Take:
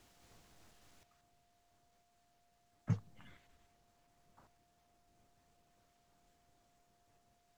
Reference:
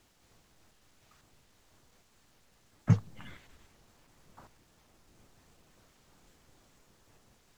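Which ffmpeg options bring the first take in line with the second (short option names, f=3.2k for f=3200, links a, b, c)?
-af "bandreject=f=700:w=30,asetnsamples=n=441:p=0,asendcmd='1.03 volume volume 11dB',volume=0dB"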